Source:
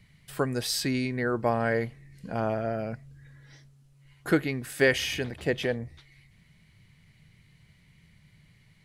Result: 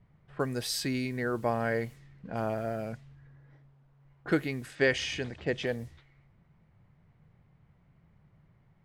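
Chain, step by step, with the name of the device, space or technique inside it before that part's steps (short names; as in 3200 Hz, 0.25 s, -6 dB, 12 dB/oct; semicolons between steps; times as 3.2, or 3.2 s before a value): cassette deck with a dynamic noise filter (white noise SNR 28 dB; low-pass opened by the level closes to 880 Hz, open at -27 dBFS); 4.75–5.67 LPF 7800 Hz 24 dB/oct; gain -3.5 dB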